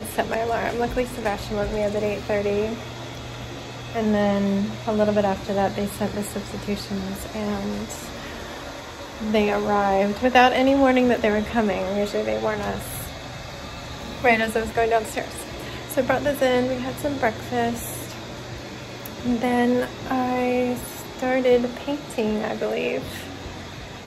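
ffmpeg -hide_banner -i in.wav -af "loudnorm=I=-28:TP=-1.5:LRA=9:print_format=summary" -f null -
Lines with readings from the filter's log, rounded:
Input Integrated:    -23.6 LUFS
Input True Peak:      -2.9 dBTP
Input LRA:             5.2 LU
Input Threshold:     -34.2 LUFS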